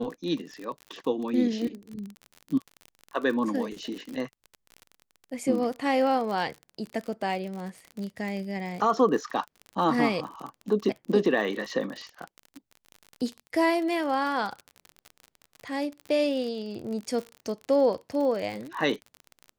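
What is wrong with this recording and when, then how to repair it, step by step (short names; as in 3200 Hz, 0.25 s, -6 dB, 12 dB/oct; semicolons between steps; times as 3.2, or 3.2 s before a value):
crackle 44/s -33 dBFS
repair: de-click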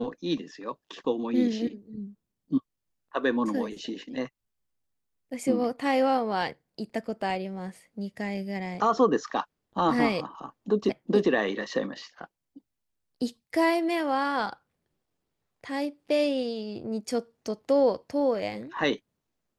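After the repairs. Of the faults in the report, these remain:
none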